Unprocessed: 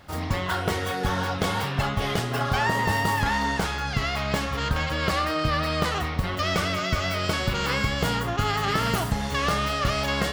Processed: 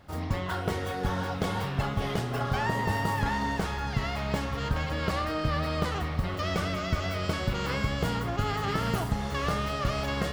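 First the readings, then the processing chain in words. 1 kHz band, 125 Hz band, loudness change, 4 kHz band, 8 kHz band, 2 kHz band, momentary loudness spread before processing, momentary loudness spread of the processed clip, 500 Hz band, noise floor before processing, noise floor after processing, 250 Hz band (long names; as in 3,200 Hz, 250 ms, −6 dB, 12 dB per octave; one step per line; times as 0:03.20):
−5.5 dB, −2.5 dB, −4.5 dB, −8.0 dB, −8.0 dB, −7.0 dB, 3 LU, 3 LU, −3.5 dB, −30 dBFS, −33 dBFS, −2.5 dB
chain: tilt shelving filter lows +3 dB
feedback delay with all-pass diffusion 553 ms, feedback 69%, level −15 dB
level −5.5 dB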